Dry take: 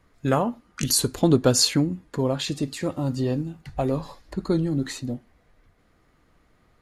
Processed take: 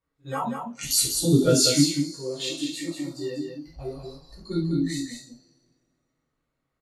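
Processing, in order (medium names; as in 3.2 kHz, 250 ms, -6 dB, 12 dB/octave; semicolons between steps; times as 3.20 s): bass shelf 220 Hz -3 dB; pre-echo 60 ms -21 dB; two-slope reverb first 0.49 s, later 3 s, from -21 dB, DRR -7 dB; spectral noise reduction 18 dB; on a send: delay 192 ms -6 dB; on the sum: trim -7.5 dB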